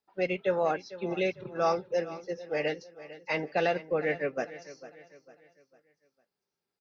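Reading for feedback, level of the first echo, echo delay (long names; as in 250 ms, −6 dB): 40%, −16.0 dB, 451 ms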